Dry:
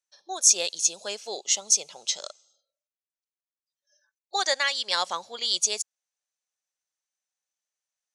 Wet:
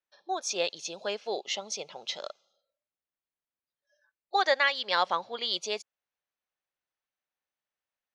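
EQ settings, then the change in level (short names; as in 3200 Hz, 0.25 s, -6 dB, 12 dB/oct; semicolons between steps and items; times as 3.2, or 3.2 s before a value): air absorption 310 m; +4.0 dB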